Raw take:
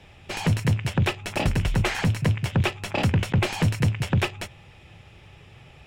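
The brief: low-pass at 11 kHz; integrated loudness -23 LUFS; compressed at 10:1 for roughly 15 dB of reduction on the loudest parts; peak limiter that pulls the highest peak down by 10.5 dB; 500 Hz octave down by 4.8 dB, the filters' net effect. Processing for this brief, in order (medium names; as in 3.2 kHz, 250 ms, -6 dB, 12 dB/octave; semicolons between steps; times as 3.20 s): low-pass 11 kHz; peaking EQ 500 Hz -6.5 dB; compression 10:1, threshold -33 dBFS; trim +18 dB; peak limiter -12.5 dBFS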